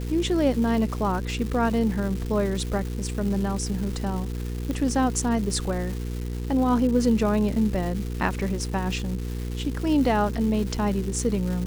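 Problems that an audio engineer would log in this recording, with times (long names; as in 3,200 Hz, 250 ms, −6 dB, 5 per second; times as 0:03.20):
surface crackle 520 per second −32 dBFS
mains hum 60 Hz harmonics 8 −30 dBFS
0:04.71: click −17 dBFS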